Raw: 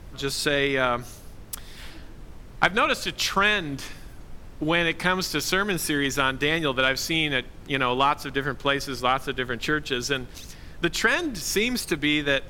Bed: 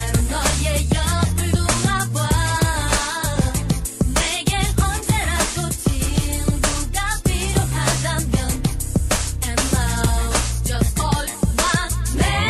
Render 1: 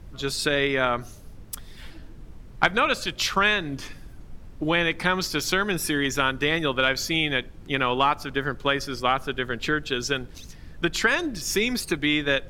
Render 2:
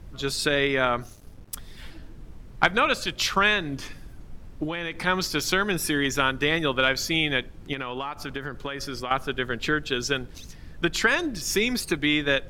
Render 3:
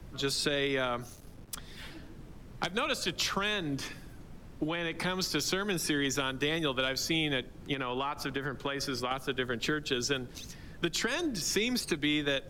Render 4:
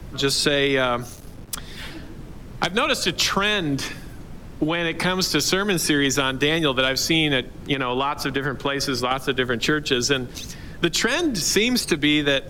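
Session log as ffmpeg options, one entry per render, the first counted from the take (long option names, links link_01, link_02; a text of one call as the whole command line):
ffmpeg -i in.wav -af "afftdn=noise_reduction=6:noise_floor=-43" out.wav
ffmpeg -i in.wav -filter_complex "[0:a]asettb=1/sr,asplit=3[link_01][link_02][link_03];[link_01]atrim=end=1.044[link_04];[link_02]atrim=start=1.04:end=1.54,asetpts=PTS-STARTPTS,afade=type=in:duration=0.004:curve=qsin,afade=type=out:start_time=0.496:duration=0.004:curve=qsin,aeval=exprs='sgn(val(0))*max(abs(val(0))-0.00335,0)':channel_layout=same[link_05];[link_03]atrim=start=1.536[link_06];[link_04][link_05]acrossfade=duration=0.004:curve1=hsin:curve2=qsin[link_07];[link_07][link_06]acrossfade=duration=0.004:curve1=qsin:curve2=hsin,asplit=3[link_08][link_09][link_10];[link_08]afade=type=out:start_time=4.64:duration=0.02[link_11];[link_09]acompressor=threshold=-26dB:ratio=6:attack=3.2:release=140:knee=1:detection=peak,afade=type=in:start_time=4.64:duration=0.02,afade=type=out:start_time=5.06:duration=0.02[link_12];[link_10]afade=type=in:start_time=5.06:duration=0.02[link_13];[link_11][link_12][link_13]amix=inputs=3:normalize=0,asettb=1/sr,asplit=3[link_14][link_15][link_16];[link_14]atrim=end=7.734[link_17];[link_15]atrim=start=7.73:end=9.11,asetpts=PTS-STARTPTS,afade=type=in:duration=0.004:curve=qsin,afade=type=out:start_time=1.376:duration=0.004:curve=qsin,acompressor=threshold=-27dB:ratio=8:attack=3.2:release=140:knee=1:detection=peak[link_18];[link_16]atrim=start=9.106[link_19];[link_17][link_18]acrossfade=duration=0.004:curve1=hsin:curve2=qsin[link_20];[link_20][link_19]acrossfade=duration=0.004:curve1=qsin:curve2=hsin" out.wav
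ffmpeg -i in.wav -filter_complex "[0:a]acrossover=split=100|1500|3500|7800[link_01][link_02][link_03][link_04][link_05];[link_01]acompressor=threshold=-49dB:ratio=4[link_06];[link_02]acompressor=threshold=-29dB:ratio=4[link_07];[link_03]acompressor=threshold=-40dB:ratio=4[link_08];[link_04]acompressor=threshold=-33dB:ratio=4[link_09];[link_05]acompressor=threshold=-45dB:ratio=4[link_10];[link_06][link_07][link_08][link_09][link_10]amix=inputs=5:normalize=0,acrossover=split=260|650|2400[link_11][link_12][link_13][link_14];[link_13]alimiter=level_in=2dB:limit=-24dB:level=0:latency=1:release=216,volume=-2dB[link_15];[link_11][link_12][link_15][link_14]amix=inputs=4:normalize=0" out.wav
ffmpeg -i in.wav -af "volume=10.5dB" out.wav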